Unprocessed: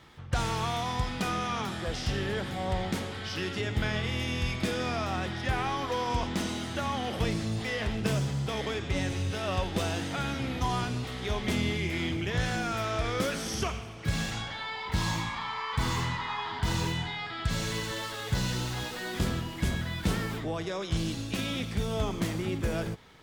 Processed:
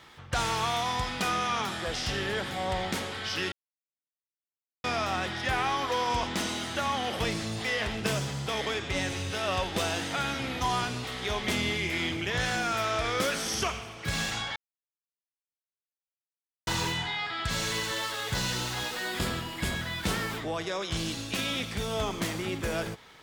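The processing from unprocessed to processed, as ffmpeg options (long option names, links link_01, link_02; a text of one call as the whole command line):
ffmpeg -i in.wav -filter_complex "[0:a]asettb=1/sr,asplit=3[link_01][link_02][link_03];[link_01]atrim=end=19.074[link_04];[link_02]atrim=start=19.07:end=19.75,asetpts=PTS-STARTPTS,afade=type=in:duration=0.004:curve=qsin,afade=type=out:start_time=0.676:duration=0.004:curve=qsin,bandreject=frequency=6000:width=10[link_05];[link_03]atrim=start=19.746[link_06];[link_04][link_05]acrossfade=duration=0.004:curve1=hsin:curve2=qsin[link_07];[link_07][link_06]acrossfade=duration=0.004:curve1=qsin:curve2=hsin,asplit=5[link_08][link_09][link_10][link_11][link_12];[link_08]atrim=end=3.52,asetpts=PTS-STARTPTS,afade=type=out:start_time=3.516:duration=0.004:curve=hsin[link_13];[link_09]atrim=start=3.52:end=4.84,asetpts=PTS-STARTPTS,volume=0[link_14];[link_10]atrim=start=4.84:end=14.56,asetpts=PTS-STARTPTS,afade=type=in:duration=0.004:curve=hsin,afade=type=out:start_time=9.716:duration=0.004:curve=hsin[link_15];[link_11]atrim=start=14.56:end=16.67,asetpts=PTS-STARTPTS,volume=0[link_16];[link_12]atrim=start=16.67,asetpts=PTS-STARTPTS,afade=type=in:duration=0.004:curve=hsin[link_17];[link_13][link_14][link_15][link_16][link_17]concat=n=5:v=0:a=1,lowshelf=frequency=370:gain=-10,volume=4.5dB" out.wav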